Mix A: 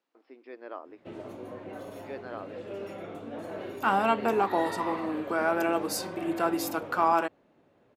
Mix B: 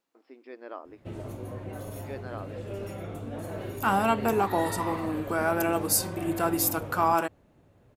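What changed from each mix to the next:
master: remove three-way crossover with the lows and the highs turned down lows −19 dB, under 190 Hz, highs −13 dB, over 5,300 Hz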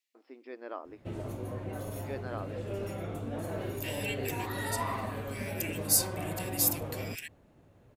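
second voice: add Butterworth high-pass 1,800 Hz 96 dB per octave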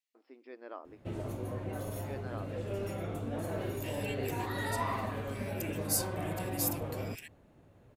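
first voice −4.5 dB
second voice −6.5 dB

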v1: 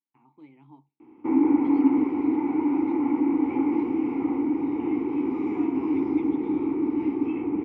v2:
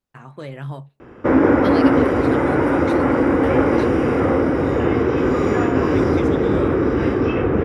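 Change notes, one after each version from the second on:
first voice +6.0 dB
master: remove formant filter u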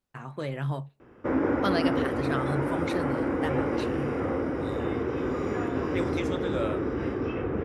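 background −11.5 dB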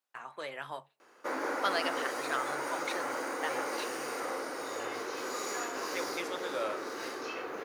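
second voice: remove meter weighting curve A
background: remove Savitzky-Golay smoothing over 25 samples
master: add high-pass filter 730 Hz 12 dB per octave

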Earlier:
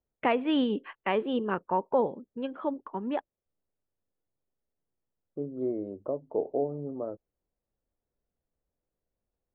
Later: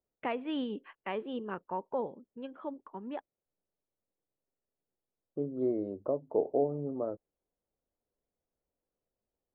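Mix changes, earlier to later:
first voice −8.5 dB
second voice: remove high-frequency loss of the air 170 metres

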